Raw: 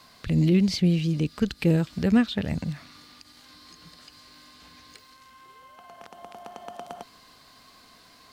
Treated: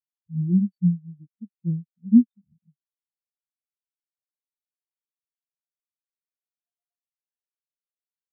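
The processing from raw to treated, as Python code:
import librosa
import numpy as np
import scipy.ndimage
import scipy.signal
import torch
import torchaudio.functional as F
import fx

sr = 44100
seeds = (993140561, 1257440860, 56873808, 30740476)

y = fx.spectral_expand(x, sr, expansion=4.0)
y = F.gain(torch.from_numpy(y), 4.0).numpy()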